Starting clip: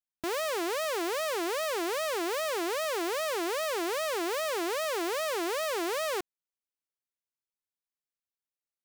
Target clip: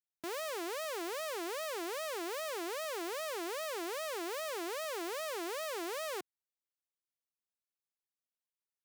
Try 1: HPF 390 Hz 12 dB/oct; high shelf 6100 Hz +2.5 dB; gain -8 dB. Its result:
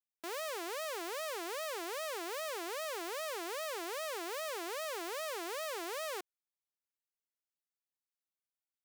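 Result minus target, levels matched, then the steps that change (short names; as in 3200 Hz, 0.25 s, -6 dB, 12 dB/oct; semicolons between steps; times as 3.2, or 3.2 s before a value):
125 Hz band -13.0 dB
change: HPF 130 Hz 12 dB/oct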